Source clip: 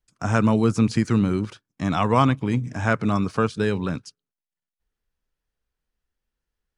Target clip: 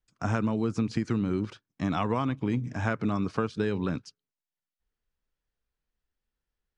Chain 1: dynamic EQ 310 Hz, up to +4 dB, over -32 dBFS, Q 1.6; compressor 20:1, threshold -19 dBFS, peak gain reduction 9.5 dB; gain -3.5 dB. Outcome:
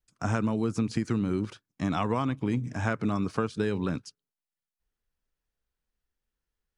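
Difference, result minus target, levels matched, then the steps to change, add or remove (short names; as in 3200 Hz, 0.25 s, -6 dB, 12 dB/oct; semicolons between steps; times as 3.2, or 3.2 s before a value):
8000 Hz band +4.0 dB
add after dynamic EQ: LPF 6100 Hz 12 dB/oct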